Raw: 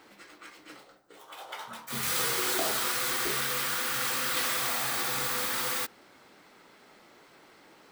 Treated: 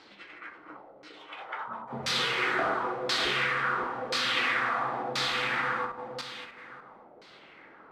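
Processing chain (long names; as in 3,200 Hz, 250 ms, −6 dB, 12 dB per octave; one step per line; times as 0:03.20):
feedback delay that plays each chunk backwards 296 ms, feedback 47%, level −5 dB
auto-filter low-pass saw down 0.97 Hz 580–4,800 Hz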